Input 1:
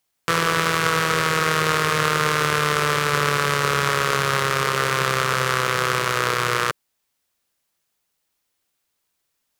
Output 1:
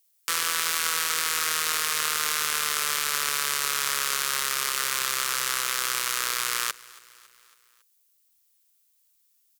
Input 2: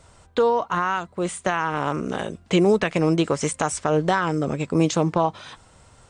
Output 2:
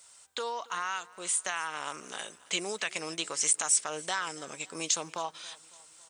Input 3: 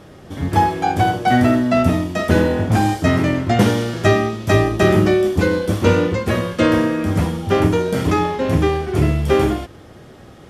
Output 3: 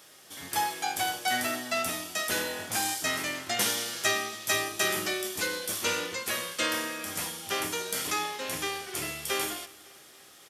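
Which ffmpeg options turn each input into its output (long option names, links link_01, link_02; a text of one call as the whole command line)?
ffmpeg -i in.wav -af "aderivative,asoftclip=type=tanh:threshold=-9dB,aecho=1:1:277|554|831|1108:0.0794|0.0453|0.0258|0.0147,volume=5dB" out.wav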